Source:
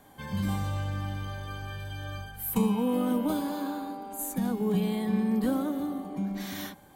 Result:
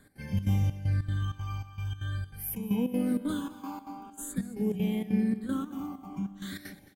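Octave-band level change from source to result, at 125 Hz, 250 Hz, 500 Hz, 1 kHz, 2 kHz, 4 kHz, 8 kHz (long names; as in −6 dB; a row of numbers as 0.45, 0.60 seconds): +3.0, −2.5, −5.5, −7.5, −4.0, −4.5, −3.0 decibels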